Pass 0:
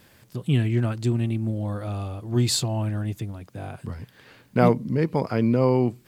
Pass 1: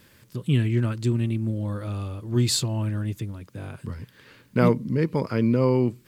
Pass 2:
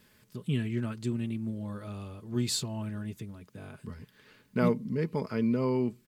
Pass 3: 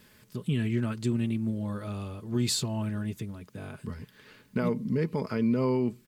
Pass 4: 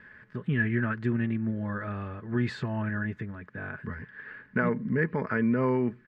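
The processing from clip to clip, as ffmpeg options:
-af "equalizer=f=730:w=4.2:g=-11.5"
-af "aecho=1:1:4.7:0.4,volume=0.422"
-af "alimiter=limit=0.0708:level=0:latency=1:release=81,volume=1.68"
-af "lowpass=f=1700:t=q:w=6.9"

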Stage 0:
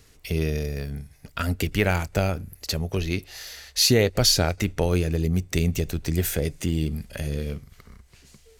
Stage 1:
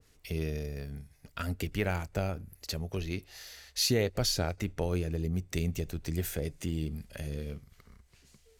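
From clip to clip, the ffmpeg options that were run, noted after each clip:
-af "adynamicequalizer=threshold=0.01:dfrequency=1700:dqfactor=0.7:tfrequency=1700:tqfactor=0.7:attack=5:release=100:ratio=0.375:range=2:mode=cutabove:tftype=highshelf,volume=0.376"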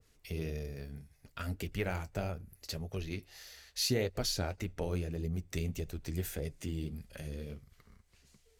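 -af "flanger=delay=1.5:depth=8.8:regen=-52:speed=1.7:shape=sinusoidal"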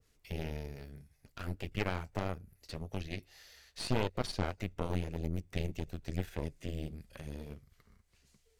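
-filter_complex "[0:a]acrossover=split=4500[s0][s1];[s1]acompressor=threshold=0.00141:ratio=4:attack=1:release=60[s2];[s0][s2]amix=inputs=2:normalize=0,aeval=exprs='0.106*(cos(1*acos(clip(val(0)/0.106,-1,1)))-cos(1*PI/2))+0.0473*(cos(4*acos(clip(val(0)/0.106,-1,1)))-cos(4*PI/2))':c=same,volume=0.668"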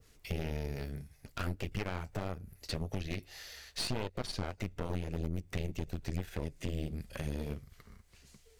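-af "acompressor=threshold=0.0112:ratio=6,asoftclip=type=hard:threshold=0.0224,volume=2.66"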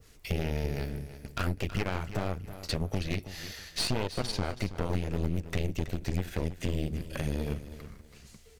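-af "aecho=1:1:325|650|975:0.224|0.0582|0.0151,volume=1.88"

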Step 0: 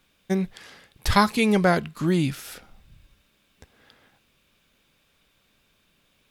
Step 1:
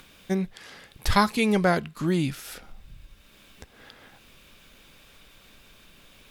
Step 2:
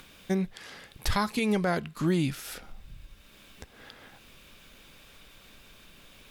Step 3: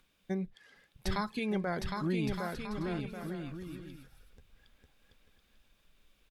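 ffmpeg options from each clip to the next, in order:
-filter_complex "[0:a]asubboost=boost=2:cutoff=57,asplit=2[s0][s1];[s1]acompressor=mode=upward:threshold=0.0447:ratio=2.5,volume=0.708[s2];[s0][s2]amix=inputs=2:normalize=0,volume=0.473"
-af "alimiter=limit=0.15:level=0:latency=1:release=216"
-af "afftdn=nr=13:nf=-40,aecho=1:1:760|1216|1490|1654|1752:0.631|0.398|0.251|0.158|0.1,volume=0.447"

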